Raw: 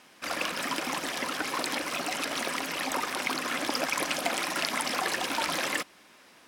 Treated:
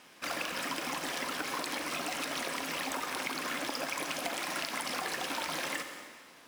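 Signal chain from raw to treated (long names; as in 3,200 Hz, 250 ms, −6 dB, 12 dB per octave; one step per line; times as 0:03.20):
noise that follows the level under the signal 17 dB
dense smooth reverb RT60 1.3 s, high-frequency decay 0.95×, DRR 7.5 dB
downward compressor, threshold −31 dBFS, peak gain reduction 8 dB
level −1 dB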